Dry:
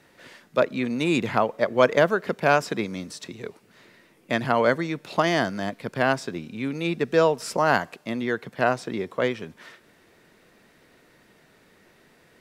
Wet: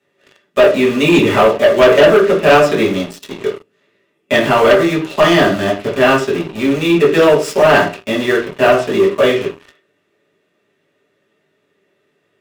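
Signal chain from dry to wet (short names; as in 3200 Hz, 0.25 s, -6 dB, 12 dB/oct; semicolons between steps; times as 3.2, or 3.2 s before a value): in parallel at -7 dB: bit-crush 5-bit; on the sum: small resonant body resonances 410/580/1200/3400 Hz, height 12 dB, ringing for 60 ms; reverb RT60 0.40 s, pre-delay 3 ms, DRR -5.5 dB; sample leveller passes 3; bell 2800 Hz +7.5 dB 0.23 oct; gain -10 dB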